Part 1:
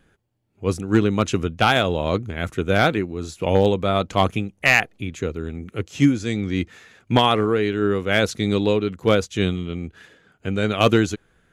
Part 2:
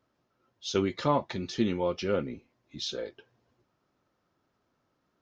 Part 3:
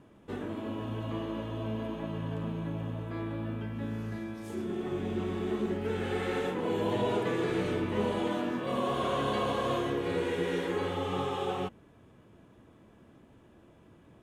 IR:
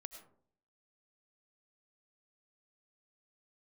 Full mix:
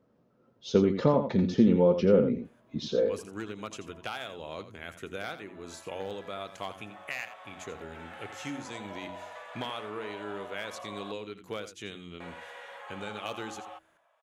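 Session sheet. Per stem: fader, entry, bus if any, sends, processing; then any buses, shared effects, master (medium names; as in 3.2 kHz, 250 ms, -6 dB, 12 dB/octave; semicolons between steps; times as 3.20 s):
-7.0 dB, 2.45 s, no send, echo send -12.5 dB, tilt EQ +3.5 dB/octave; de-hum 45.89 Hz, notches 8; compression 2.5:1, threshold -30 dBFS, peak gain reduction 15.5 dB
+1.0 dB, 0.00 s, no send, echo send -8.5 dB, compression 2.5:1, threshold -28 dBFS, peak gain reduction 6 dB; small resonant body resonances 200/460 Hz, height 12 dB, ringing for 25 ms
-1.5 dB, 2.10 s, muted 11.12–12.20 s, no send, no echo send, elliptic high-pass 590 Hz, stop band 40 dB; compression, threshold -38 dBFS, peak gain reduction 8.5 dB; auto duck -20 dB, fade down 1.15 s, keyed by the second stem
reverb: none
echo: delay 85 ms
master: treble shelf 2.5 kHz -9 dB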